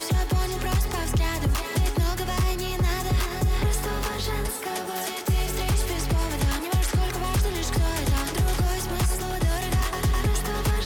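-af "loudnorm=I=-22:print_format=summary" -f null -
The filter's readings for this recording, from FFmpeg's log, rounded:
Input Integrated:    -25.9 LUFS
Input True Peak:     -14.6 dBTP
Input LRA:             1.1 LU
Input Threshold:     -35.9 LUFS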